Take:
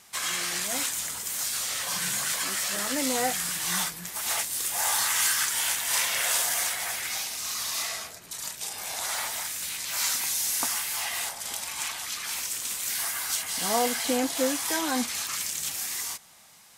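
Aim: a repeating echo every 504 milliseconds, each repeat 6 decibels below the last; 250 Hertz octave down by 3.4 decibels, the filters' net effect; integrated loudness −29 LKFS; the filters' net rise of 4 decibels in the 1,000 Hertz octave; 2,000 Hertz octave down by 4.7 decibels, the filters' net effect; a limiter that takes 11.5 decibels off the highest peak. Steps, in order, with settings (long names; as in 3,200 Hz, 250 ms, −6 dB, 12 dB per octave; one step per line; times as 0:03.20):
parametric band 250 Hz −4 dB
parametric band 1,000 Hz +7.5 dB
parametric band 2,000 Hz −8.5 dB
brickwall limiter −21 dBFS
repeating echo 504 ms, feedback 50%, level −6 dB
level −0.5 dB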